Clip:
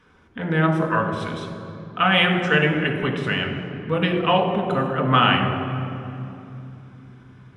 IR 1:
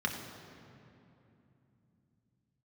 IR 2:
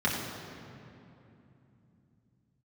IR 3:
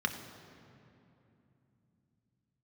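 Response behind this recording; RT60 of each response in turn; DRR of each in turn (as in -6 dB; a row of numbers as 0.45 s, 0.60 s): 1; 2.9 s, 2.9 s, 2.9 s; 0.5 dB, -6.0 dB, 4.5 dB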